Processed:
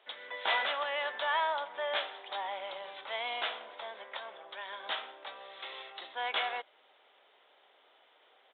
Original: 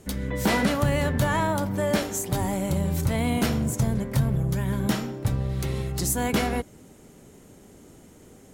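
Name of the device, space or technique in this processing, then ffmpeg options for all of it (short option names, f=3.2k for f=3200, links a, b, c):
musical greeting card: -filter_complex "[0:a]aresample=8000,aresample=44100,highpass=f=670:w=0.5412,highpass=f=670:w=1.3066,equalizer=f=3.5k:t=o:w=0.38:g=8,asettb=1/sr,asplit=3[a][b][c];[a]atrim=end=3.434[d];[b]atrim=start=3.43:end=4.89,asetpts=PTS-STARTPTS,afade=t=in:d=0.004:c=qsin,afade=t=out:st=1.456:d=0.004:c=qsin,highpass=190[e];[c]atrim=start=4.886[f];[d][e]acrossfade=d=0.004:c1=hsin:c2=qsin[g];[g][f]acrossfade=d=0.004:c1=qsin:c2=hsin,volume=-3.5dB"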